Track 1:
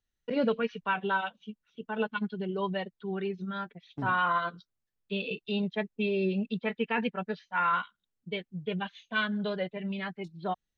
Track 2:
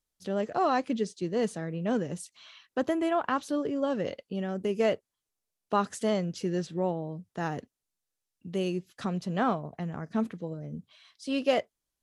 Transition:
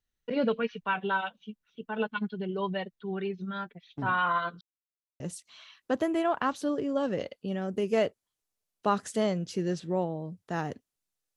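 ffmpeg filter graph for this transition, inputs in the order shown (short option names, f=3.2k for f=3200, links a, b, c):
-filter_complex "[0:a]apad=whole_dur=11.36,atrim=end=11.36,asplit=2[a][b];[a]atrim=end=4.61,asetpts=PTS-STARTPTS,afade=t=out:st=4.606:d=0.004:c=hsin[c];[b]atrim=start=4.61:end=5.2,asetpts=PTS-STARTPTS,volume=0[d];[1:a]atrim=start=2.07:end=8.23,asetpts=PTS-STARTPTS,afade=t=in:d=0.004:c=hsin[e];[c][d][e]concat=n=3:v=0:a=1"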